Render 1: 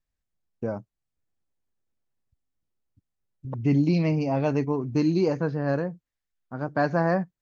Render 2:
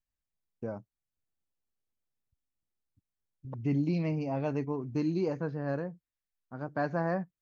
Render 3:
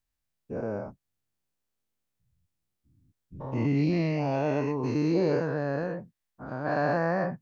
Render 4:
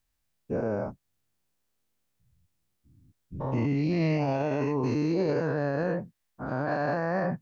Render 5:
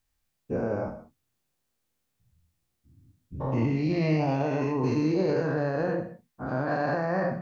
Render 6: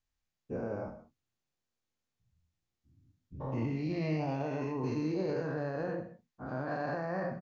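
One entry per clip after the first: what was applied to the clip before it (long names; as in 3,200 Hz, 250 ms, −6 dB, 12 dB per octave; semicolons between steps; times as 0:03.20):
dynamic equaliser 5,200 Hz, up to −4 dB, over −50 dBFS, Q 1.1; level −7.5 dB
every bin's largest magnitude spread in time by 240 ms
brickwall limiter −25 dBFS, peak gain reduction 10.5 dB; level +5.5 dB
reverb whose tail is shaped and stops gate 220 ms falling, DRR 5.5 dB
downsampling to 16,000 Hz; level −8 dB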